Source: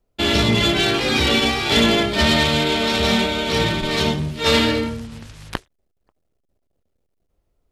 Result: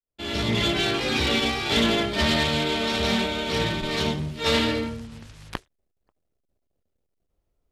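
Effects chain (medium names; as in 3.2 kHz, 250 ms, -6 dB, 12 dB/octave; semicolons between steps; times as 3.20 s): fade-in on the opening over 0.59 s; loudspeaker Doppler distortion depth 0.15 ms; trim -5.5 dB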